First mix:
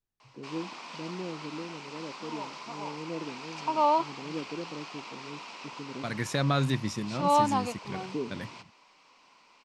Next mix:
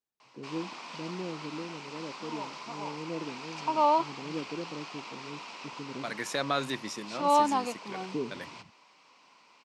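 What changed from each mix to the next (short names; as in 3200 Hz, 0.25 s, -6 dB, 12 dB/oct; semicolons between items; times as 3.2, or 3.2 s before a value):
second voice: add HPF 350 Hz 12 dB/oct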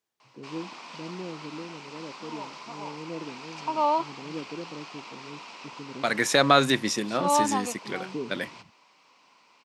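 second voice +11.0 dB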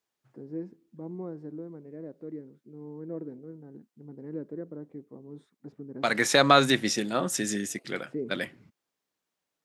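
background: muted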